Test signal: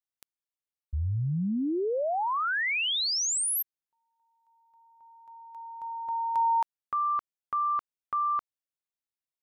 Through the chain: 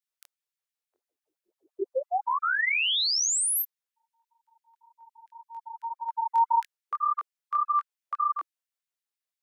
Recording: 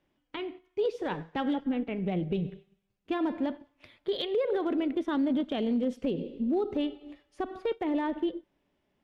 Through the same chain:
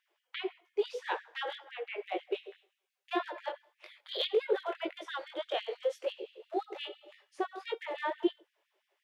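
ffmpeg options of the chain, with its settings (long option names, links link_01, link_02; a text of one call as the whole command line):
ffmpeg -i in.wav -af "flanger=delay=19.5:depth=5.7:speed=1.8,afftfilt=real='re*gte(b*sr/1024,320*pow(1700/320,0.5+0.5*sin(2*PI*5.9*pts/sr)))':imag='im*gte(b*sr/1024,320*pow(1700/320,0.5+0.5*sin(2*PI*5.9*pts/sr)))':win_size=1024:overlap=0.75,volume=5.5dB" out.wav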